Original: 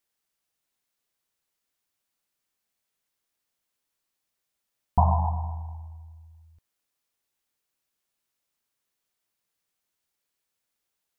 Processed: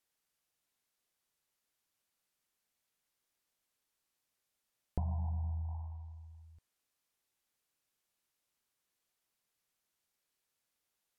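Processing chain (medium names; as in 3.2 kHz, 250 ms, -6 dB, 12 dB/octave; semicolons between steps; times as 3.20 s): low-pass that closes with the level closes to 390 Hz, closed at -30.5 dBFS; compression 6:1, threshold -31 dBFS, peak gain reduction 12.5 dB; trim -2 dB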